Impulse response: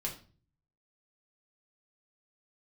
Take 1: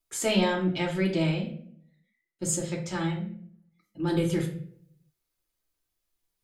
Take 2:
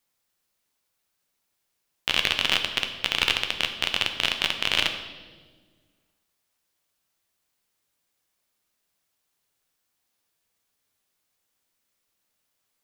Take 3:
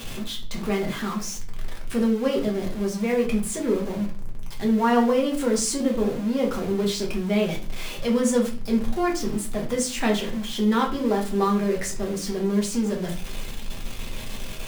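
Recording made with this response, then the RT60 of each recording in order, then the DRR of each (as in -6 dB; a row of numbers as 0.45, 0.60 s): 3; 0.60, 1.5, 0.40 s; -2.0, 5.0, -1.5 dB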